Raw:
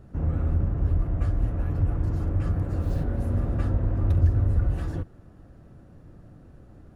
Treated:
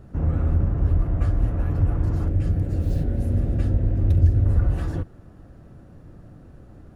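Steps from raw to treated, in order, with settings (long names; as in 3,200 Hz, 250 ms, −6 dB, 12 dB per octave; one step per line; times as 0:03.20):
0:02.28–0:04.46: parametric band 1,100 Hz −13.5 dB 1 octave
level +3.5 dB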